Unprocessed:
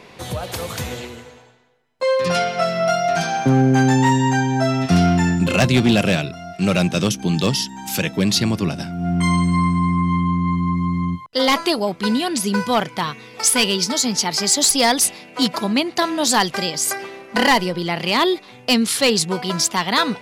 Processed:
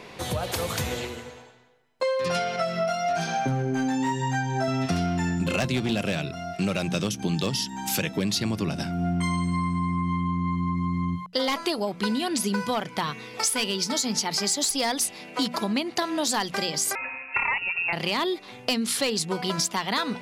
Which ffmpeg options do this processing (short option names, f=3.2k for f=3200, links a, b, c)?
-filter_complex "[0:a]asettb=1/sr,asplit=3[a][b][c];[a]atrim=end=2.564[d];[b]atrim=start=2.56:end=4.68,asetpts=PTS-STARTPTS,afade=t=in:d=0.004:c=qsin,afade=t=out:st=2.116:d=0.004:c=qsin,flanger=delay=16.5:depth=2.5:speed=1.1[e];[c]atrim=start=4.676[f];[d][e]acrossfade=d=0.004:c1=hsin:c2=qsin[g];[g][f]acrossfade=d=0.004:c1=qsin:c2=hsin,asettb=1/sr,asplit=3[h][i][j];[h]atrim=end=16.954[k];[i]atrim=start=16.95:end=17.93,asetpts=PTS-STARTPTS,afade=t=in:d=0.004:c=qsin,afade=t=out:st=0.976:d=0.004:c=qsin,lowpass=f=2.5k:t=q:w=0.5098,lowpass=f=2.5k:t=q:w=0.6013,lowpass=f=2.5k:t=q:w=0.9,lowpass=f=2.5k:t=q:w=2.563,afreqshift=-2900[l];[j]atrim=start=17.926[m];[k][l]acrossfade=d=0.004:c1=hsin:c2=qsin[n];[n][m]acrossfade=d=0.004:c1=qsin:c2=hsin,bandreject=f=60:t=h:w=6,bandreject=f=120:t=h:w=6,bandreject=f=180:t=h:w=6,bandreject=f=240:t=h:w=6,acompressor=threshold=-23dB:ratio=6"